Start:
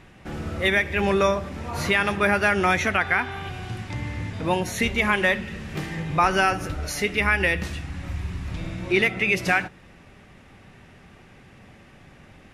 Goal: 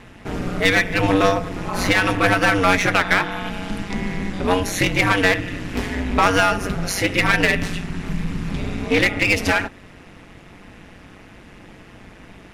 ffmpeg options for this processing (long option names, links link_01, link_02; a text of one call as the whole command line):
ffmpeg -i in.wav -af "acontrast=66,aeval=exprs='val(0)*sin(2*PI*94*n/s)':channel_layout=same,aeval=exprs='clip(val(0),-1,0.133)':channel_layout=same,volume=2.5dB" out.wav